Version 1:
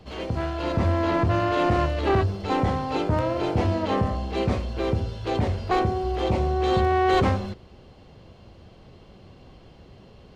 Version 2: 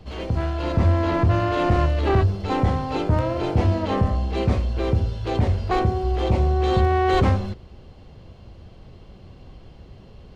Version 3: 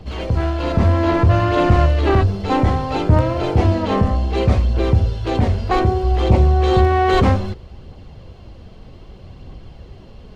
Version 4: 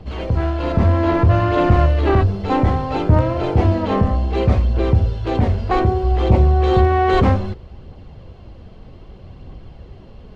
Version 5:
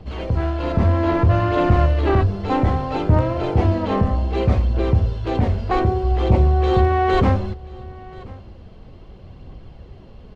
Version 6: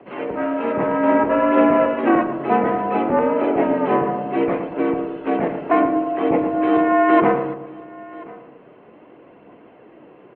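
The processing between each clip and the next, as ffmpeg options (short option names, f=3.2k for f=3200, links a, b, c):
-af "lowshelf=f=100:g=10"
-af "aphaser=in_gain=1:out_gain=1:delay=4.8:decay=0.27:speed=0.63:type=triangular,volume=4.5dB"
-af "highshelf=f=4.4k:g=-9.5"
-af "aecho=1:1:1032:0.0794,volume=-2dB"
-filter_complex "[0:a]highpass=f=310:t=q:w=0.5412,highpass=f=310:t=q:w=1.307,lowpass=f=2.6k:t=q:w=0.5176,lowpass=f=2.6k:t=q:w=0.7071,lowpass=f=2.6k:t=q:w=1.932,afreqshift=-58,asplit=2[a][b];[b]adelay=113,lowpass=f=1.4k:p=1,volume=-8dB,asplit=2[c][d];[d]adelay=113,lowpass=f=1.4k:p=1,volume=0.52,asplit=2[e][f];[f]adelay=113,lowpass=f=1.4k:p=1,volume=0.52,asplit=2[g][h];[h]adelay=113,lowpass=f=1.4k:p=1,volume=0.52,asplit=2[i][j];[j]adelay=113,lowpass=f=1.4k:p=1,volume=0.52,asplit=2[k][l];[l]adelay=113,lowpass=f=1.4k:p=1,volume=0.52[m];[a][c][e][g][i][k][m]amix=inputs=7:normalize=0,volume=4.5dB"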